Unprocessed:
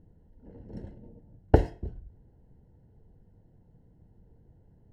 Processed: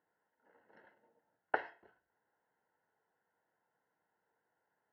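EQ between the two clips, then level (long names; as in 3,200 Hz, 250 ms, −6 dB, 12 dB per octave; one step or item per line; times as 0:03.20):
four-pole ladder band-pass 1,600 Hz, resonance 45%
high-frequency loss of the air 190 metres
+12.5 dB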